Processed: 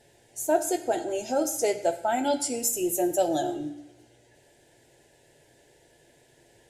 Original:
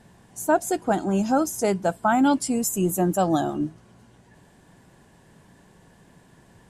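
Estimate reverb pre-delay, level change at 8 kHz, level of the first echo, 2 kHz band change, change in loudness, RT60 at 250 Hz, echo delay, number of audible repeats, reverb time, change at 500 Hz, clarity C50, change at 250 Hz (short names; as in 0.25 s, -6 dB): 3 ms, +0.5 dB, none, -6.5 dB, -3.5 dB, 1.0 s, none, none, 1.1 s, -1.0 dB, 12.0 dB, -8.0 dB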